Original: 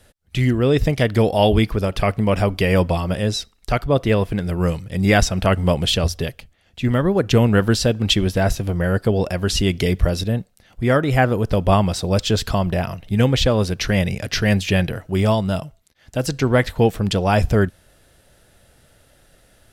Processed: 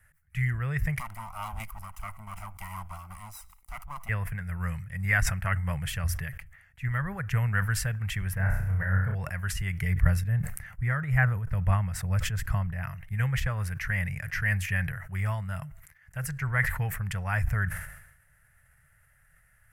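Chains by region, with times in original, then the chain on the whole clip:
0.99–4.09 s: comb filter that takes the minimum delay 1 ms + bass shelf 400 Hz -5.5 dB + static phaser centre 470 Hz, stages 6
8.33–9.15 s: peaking EQ 6.7 kHz -13.5 dB 2.5 oct + flutter echo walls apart 5.5 m, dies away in 0.66 s
9.81–12.83 s: bass shelf 480 Hz +6 dB + tremolo triangle 2.3 Hz, depth 60%
whole clip: FFT filter 150 Hz 0 dB, 280 Hz -29 dB, 1.9 kHz +8 dB, 3.7 kHz -21 dB, 11 kHz +1 dB; decay stretcher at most 66 dB/s; trim -8.5 dB

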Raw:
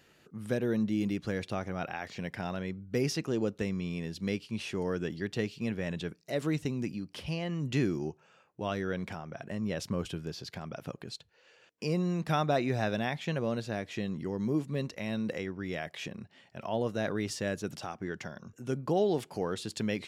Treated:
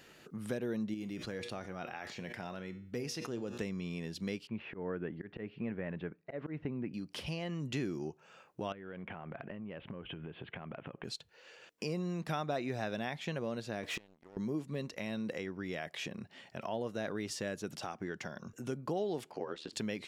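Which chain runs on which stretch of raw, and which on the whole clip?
0.94–3.60 s: feedback comb 120 Hz, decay 0.44 s + decay stretcher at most 66 dB/s
4.47–6.94 s: low-pass 2.2 kHz 24 dB/octave + slow attack 170 ms
8.72–11.04 s: steep low-pass 3.2 kHz 72 dB/octave + compression, threshold -41 dBFS
13.83–14.37 s: inverted gate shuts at -31 dBFS, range -32 dB + tone controls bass -6 dB, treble -3 dB + waveshaping leveller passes 3
19.31–19.73 s: band-pass 240–3800 Hz + ring modulator 38 Hz
whole clip: peaking EQ 81 Hz -5.5 dB 1.7 oct; compression 2:1, threshold -47 dBFS; trim +5 dB

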